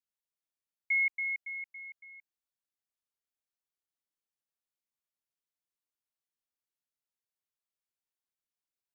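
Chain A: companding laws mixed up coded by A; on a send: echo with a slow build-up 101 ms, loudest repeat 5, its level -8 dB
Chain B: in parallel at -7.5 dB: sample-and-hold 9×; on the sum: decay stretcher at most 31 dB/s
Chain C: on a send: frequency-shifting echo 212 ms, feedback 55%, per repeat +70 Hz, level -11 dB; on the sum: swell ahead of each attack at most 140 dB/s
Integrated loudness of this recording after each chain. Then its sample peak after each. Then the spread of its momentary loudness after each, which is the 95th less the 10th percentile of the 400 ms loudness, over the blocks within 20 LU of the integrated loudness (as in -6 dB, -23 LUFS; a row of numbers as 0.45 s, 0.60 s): -33.0 LUFS, -29.5 LUFS, -31.5 LUFS; -24.0 dBFS, -19.0 dBFS, -23.5 dBFS; 20 LU, 20 LU, 20 LU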